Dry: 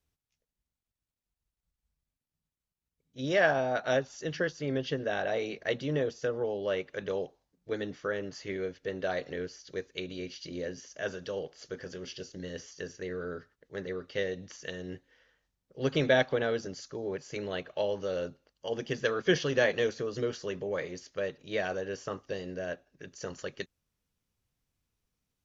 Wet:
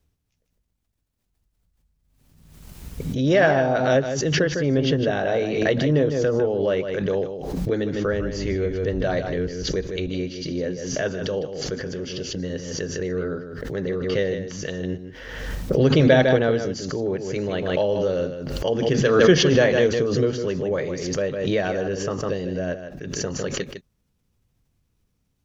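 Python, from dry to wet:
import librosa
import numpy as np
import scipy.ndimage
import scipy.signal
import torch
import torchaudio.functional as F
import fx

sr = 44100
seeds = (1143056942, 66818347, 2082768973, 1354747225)

y = fx.octave_divider(x, sr, octaves=2, level_db=-4.0, at=(7.94, 10.08))
y = fx.low_shelf(y, sr, hz=490.0, db=9.5)
y = y + 10.0 ** (-9.0 / 20.0) * np.pad(y, (int(154 * sr / 1000.0), 0))[:len(y)]
y = fx.pre_swell(y, sr, db_per_s=39.0)
y = F.gain(torch.from_numpy(y), 4.0).numpy()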